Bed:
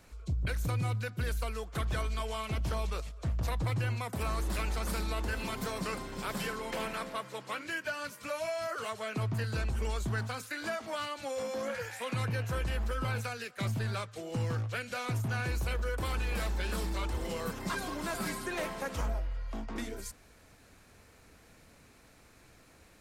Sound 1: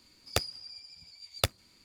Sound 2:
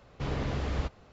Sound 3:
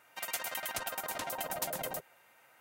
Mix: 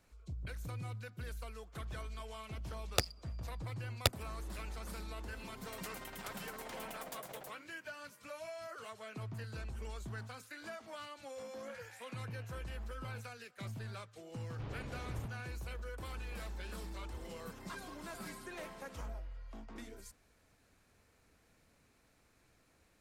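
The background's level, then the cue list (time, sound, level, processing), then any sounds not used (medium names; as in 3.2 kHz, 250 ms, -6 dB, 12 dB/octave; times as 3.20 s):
bed -11 dB
2.62 s: add 1 -2.5 dB + local Wiener filter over 25 samples
5.50 s: add 3 -11 dB + loudspeaker Doppler distortion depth 0.53 ms
14.39 s: add 2 -13 dB + distance through air 110 m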